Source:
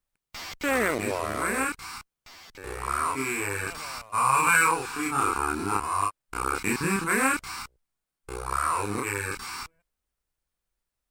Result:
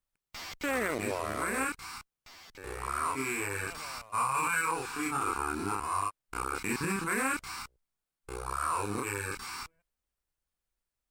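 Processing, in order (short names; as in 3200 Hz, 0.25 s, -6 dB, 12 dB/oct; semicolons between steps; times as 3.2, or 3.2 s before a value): 8.44–9.33 bell 2000 Hz -7.5 dB 0.23 oct; limiter -16.5 dBFS, peak gain reduction 8.5 dB; gain -4 dB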